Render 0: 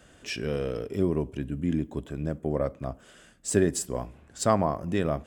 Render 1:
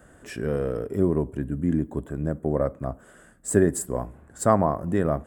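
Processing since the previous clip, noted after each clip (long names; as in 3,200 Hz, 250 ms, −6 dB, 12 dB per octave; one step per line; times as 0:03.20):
flat-topped bell 3,800 Hz −13.5 dB
level +3.5 dB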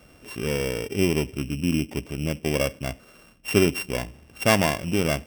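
samples sorted by size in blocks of 16 samples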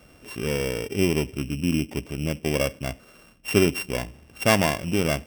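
no processing that can be heard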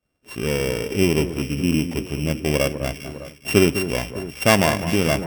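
delay that swaps between a low-pass and a high-pass 202 ms, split 1,700 Hz, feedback 74%, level −10 dB
downward expander −36 dBFS
level +3.5 dB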